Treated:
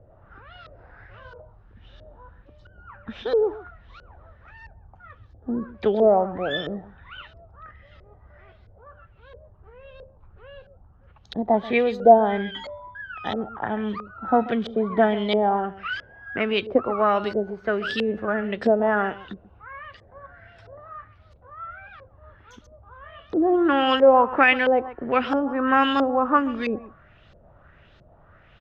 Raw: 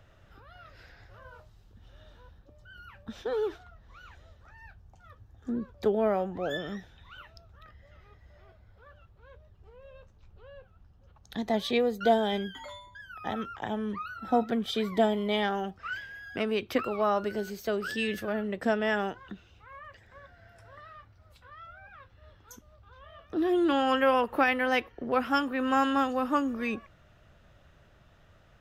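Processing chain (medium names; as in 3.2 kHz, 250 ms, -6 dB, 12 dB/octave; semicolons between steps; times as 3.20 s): on a send: delay 135 ms -16 dB; on the sum: LFO low-pass saw up 1.5 Hz 480–4700 Hz; trim +4.5 dB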